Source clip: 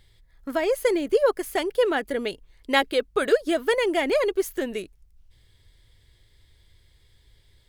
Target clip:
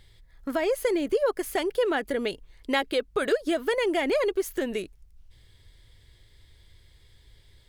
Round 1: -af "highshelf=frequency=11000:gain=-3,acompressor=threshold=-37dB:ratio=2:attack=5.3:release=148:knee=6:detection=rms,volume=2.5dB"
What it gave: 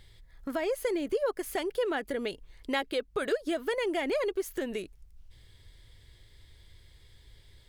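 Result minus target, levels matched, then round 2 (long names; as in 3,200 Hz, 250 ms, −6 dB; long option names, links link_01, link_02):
downward compressor: peak gain reduction +5 dB
-af "highshelf=frequency=11000:gain=-3,acompressor=threshold=-27dB:ratio=2:attack=5.3:release=148:knee=6:detection=rms,volume=2.5dB"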